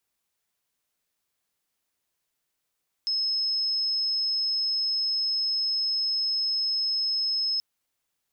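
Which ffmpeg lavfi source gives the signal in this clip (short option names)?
-f lavfi -i "sine=f=5180:d=4.53:r=44100,volume=-5.44dB"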